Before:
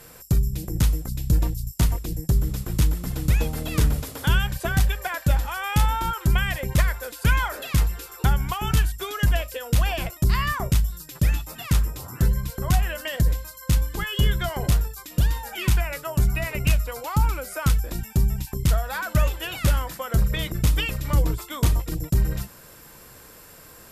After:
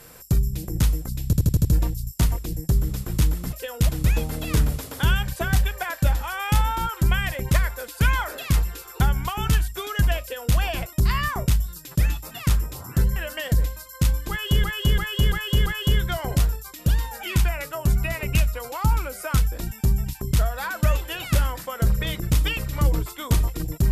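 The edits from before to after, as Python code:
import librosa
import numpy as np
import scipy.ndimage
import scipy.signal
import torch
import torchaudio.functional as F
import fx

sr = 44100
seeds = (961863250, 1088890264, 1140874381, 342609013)

y = fx.edit(x, sr, fx.stutter(start_s=1.25, slice_s=0.08, count=6),
    fx.duplicate(start_s=9.45, length_s=0.36, to_s=3.13),
    fx.cut(start_s=12.4, length_s=0.44),
    fx.repeat(start_s=13.98, length_s=0.34, count=5), tone=tone)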